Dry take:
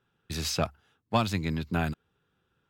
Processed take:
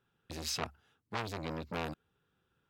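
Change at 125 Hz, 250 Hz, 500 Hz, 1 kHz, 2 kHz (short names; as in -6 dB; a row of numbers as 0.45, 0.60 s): -13.0, -12.0, -8.5, -8.5, -7.0 dB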